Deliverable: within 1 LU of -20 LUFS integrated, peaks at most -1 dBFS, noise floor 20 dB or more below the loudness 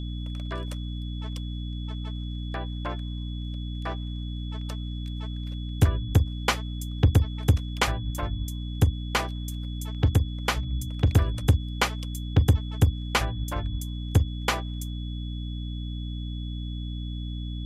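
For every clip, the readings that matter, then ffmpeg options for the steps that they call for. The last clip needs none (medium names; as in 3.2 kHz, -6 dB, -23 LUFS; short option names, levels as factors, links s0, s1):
hum 60 Hz; highest harmonic 300 Hz; hum level -30 dBFS; steady tone 3.4 kHz; tone level -45 dBFS; loudness -28.5 LUFS; peak level -9.5 dBFS; loudness target -20.0 LUFS
-> -af "bandreject=f=60:t=h:w=4,bandreject=f=120:t=h:w=4,bandreject=f=180:t=h:w=4,bandreject=f=240:t=h:w=4,bandreject=f=300:t=h:w=4"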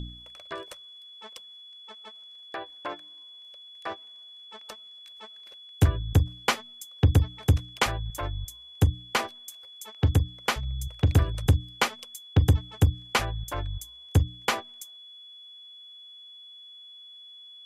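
hum not found; steady tone 3.4 kHz; tone level -45 dBFS
-> -af "bandreject=f=3400:w=30"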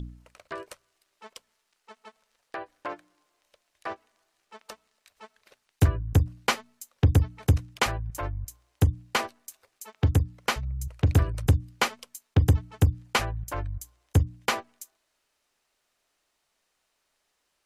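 steady tone not found; loudness -27.0 LUFS; peak level -10.5 dBFS; loudness target -20.0 LUFS
-> -af "volume=2.24"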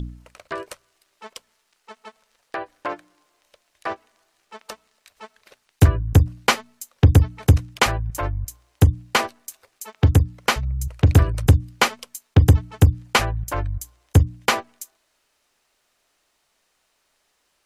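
loudness -20.5 LUFS; peak level -3.5 dBFS; noise floor -70 dBFS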